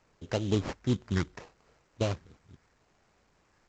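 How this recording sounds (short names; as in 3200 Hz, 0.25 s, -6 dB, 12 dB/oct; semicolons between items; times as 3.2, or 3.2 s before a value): a quantiser's noise floor 12-bit, dither triangular; phasing stages 6, 0.73 Hz, lowest notch 690–2200 Hz; aliases and images of a low sample rate 3500 Hz, jitter 20%; A-law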